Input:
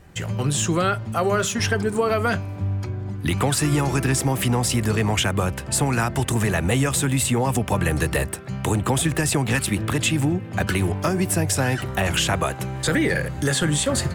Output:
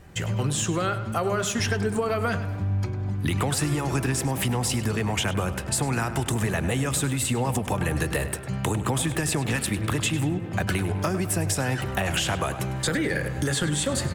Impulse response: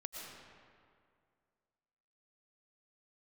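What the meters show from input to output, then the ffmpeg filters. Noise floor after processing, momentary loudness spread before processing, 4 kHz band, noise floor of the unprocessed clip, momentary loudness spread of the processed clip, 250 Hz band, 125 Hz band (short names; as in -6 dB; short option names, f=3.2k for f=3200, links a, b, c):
-32 dBFS, 5 LU, -3.5 dB, -33 dBFS, 3 LU, -4.0 dB, -3.5 dB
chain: -filter_complex "[0:a]acompressor=threshold=-22dB:ratio=6,asplit=2[a][b];[b]adelay=101,lowpass=f=4.5k:p=1,volume=-11.5dB,asplit=2[c][d];[d]adelay=101,lowpass=f=4.5k:p=1,volume=0.51,asplit=2[e][f];[f]adelay=101,lowpass=f=4.5k:p=1,volume=0.51,asplit=2[g][h];[h]adelay=101,lowpass=f=4.5k:p=1,volume=0.51,asplit=2[i][j];[j]adelay=101,lowpass=f=4.5k:p=1,volume=0.51[k];[c][e][g][i][k]amix=inputs=5:normalize=0[l];[a][l]amix=inputs=2:normalize=0"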